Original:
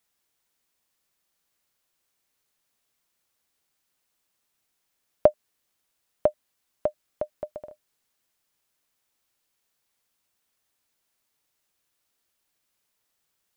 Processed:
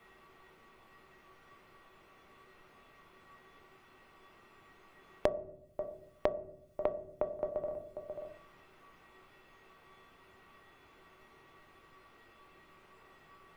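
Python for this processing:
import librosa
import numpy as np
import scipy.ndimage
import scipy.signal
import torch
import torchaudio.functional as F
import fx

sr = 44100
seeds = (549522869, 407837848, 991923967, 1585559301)

y = fx.notch(x, sr, hz=1700.0, q=8.7)
y = fx.comb_fb(y, sr, f0_hz=380.0, decay_s=0.43, harmonics='odd', damping=0.0, mix_pct=90)
y = y + 10.0 ** (-23.0 / 20.0) * np.pad(y, (int(538 * sr / 1000.0), 0))[:len(y)]
y = fx.room_shoebox(y, sr, seeds[0], volume_m3=59.0, walls='mixed', distance_m=0.45)
y = fx.band_squash(y, sr, depth_pct=100)
y = y * 10.0 ** (11.5 / 20.0)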